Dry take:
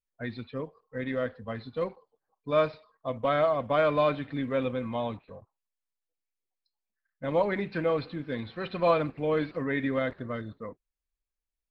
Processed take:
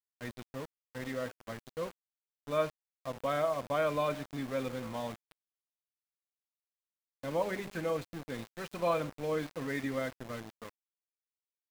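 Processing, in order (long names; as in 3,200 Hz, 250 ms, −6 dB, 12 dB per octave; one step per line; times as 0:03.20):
hum removal 100.9 Hz, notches 7
centre clipping without the shift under −35.5 dBFS
level −6 dB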